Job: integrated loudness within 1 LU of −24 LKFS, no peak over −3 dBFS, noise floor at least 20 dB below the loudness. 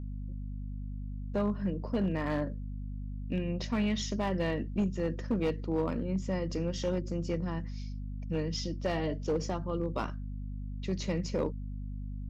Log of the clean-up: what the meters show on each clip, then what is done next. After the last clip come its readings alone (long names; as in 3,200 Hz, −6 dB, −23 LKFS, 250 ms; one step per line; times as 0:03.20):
share of clipped samples 1.0%; peaks flattened at −23.5 dBFS; mains hum 50 Hz; hum harmonics up to 250 Hz; level of the hum −36 dBFS; integrated loudness −34.0 LKFS; sample peak −23.5 dBFS; target loudness −24.0 LKFS
→ clipped peaks rebuilt −23.5 dBFS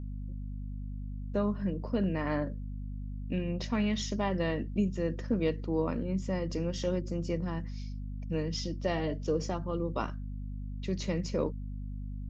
share of clipped samples 0.0%; mains hum 50 Hz; hum harmonics up to 250 Hz; level of the hum −36 dBFS
→ mains-hum notches 50/100/150/200/250 Hz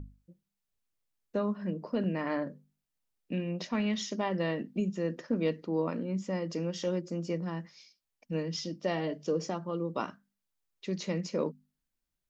mains hum none found; integrated loudness −34.0 LKFS; sample peak −18.5 dBFS; target loudness −24.0 LKFS
→ level +10 dB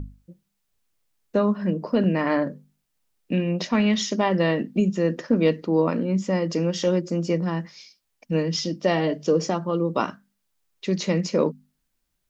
integrated loudness −24.0 LKFS; sample peak −8.5 dBFS; background noise floor −76 dBFS